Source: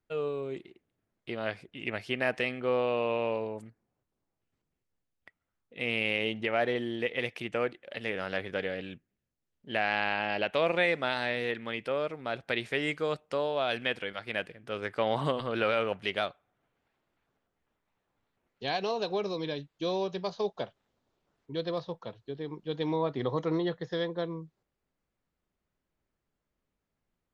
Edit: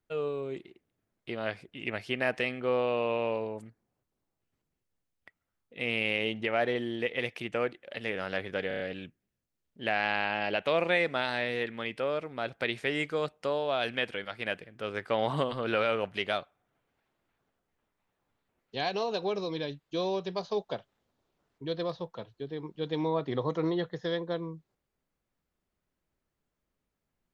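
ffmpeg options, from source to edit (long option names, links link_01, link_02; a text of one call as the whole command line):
ffmpeg -i in.wav -filter_complex "[0:a]asplit=5[link_01][link_02][link_03][link_04][link_05];[link_01]atrim=end=8.712[link_06];[link_02]atrim=start=8.678:end=8.712[link_07];[link_03]atrim=start=8.678:end=8.712[link_08];[link_04]atrim=start=8.678:end=8.712[link_09];[link_05]atrim=start=8.678[link_10];[link_06][link_07]acrossfade=duration=0.004:curve1=hsin:curve2=hsin[link_11];[link_11][link_08]acrossfade=duration=0.004:curve1=hsin:curve2=hsin[link_12];[link_12][link_09]acrossfade=duration=0.004:curve1=hsin:curve2=hsin[link_13];[link_13][link_10]acrossfade=duration=0.004:curve1=hsin:curve2=hsin" out.wav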